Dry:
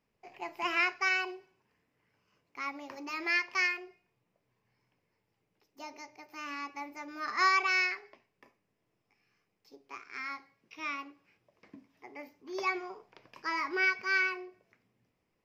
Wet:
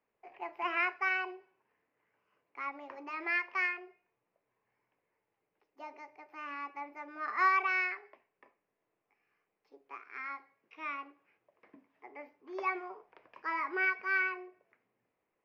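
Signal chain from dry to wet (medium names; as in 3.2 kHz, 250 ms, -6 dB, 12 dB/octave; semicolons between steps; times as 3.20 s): three-band isolator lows -14 dB, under 330 Hz, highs -22 dB, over 2.6 kHz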